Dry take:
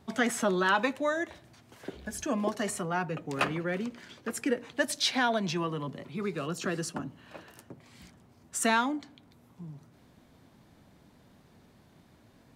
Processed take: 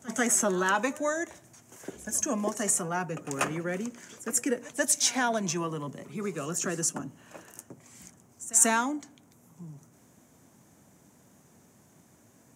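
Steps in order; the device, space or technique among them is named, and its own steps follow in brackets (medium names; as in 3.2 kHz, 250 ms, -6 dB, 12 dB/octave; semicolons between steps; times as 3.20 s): reverse echo 140 ms -20 dB; budget condenser microphone (high-pass 100 Hz; resonant high shelf 5.3 kHz +8 dB, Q 3)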